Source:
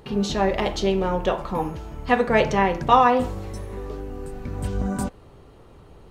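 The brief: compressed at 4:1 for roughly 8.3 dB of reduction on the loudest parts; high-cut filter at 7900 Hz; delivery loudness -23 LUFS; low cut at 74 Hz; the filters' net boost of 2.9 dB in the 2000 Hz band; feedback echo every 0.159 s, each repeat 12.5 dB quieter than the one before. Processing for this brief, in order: HPF 74 Hz; LPF 7900 Hz; bell 2000 Hz +3.5 dB; compressor 4:1, threshold -20 dBFS; feedback echo 0.159 s, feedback 24%, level -12.5 dB; gain +4 dB

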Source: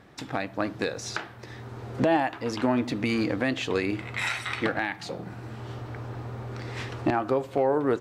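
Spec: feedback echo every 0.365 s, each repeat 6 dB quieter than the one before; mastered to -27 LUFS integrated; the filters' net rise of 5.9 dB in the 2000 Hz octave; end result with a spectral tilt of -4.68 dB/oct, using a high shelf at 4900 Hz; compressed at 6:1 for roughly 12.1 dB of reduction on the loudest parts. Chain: bell 2000 Hz +6.5 dB; high shelf 4900 Hz +4 dB; compressor 6:1, threshold -32 dBFS; feedback echo 0.365 s, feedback 50%, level -6 dB; gain +8 dB

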